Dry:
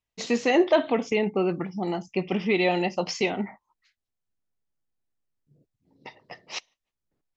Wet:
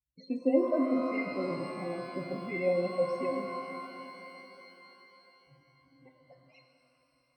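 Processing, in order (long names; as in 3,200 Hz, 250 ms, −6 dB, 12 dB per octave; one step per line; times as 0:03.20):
spectral peaks only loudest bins 16
resonances in every octave C, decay 0.19 s
reverb with rising layers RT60 3.6 s, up +12 semitones, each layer −8 dB, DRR 4.5 dB
level +7.5 dB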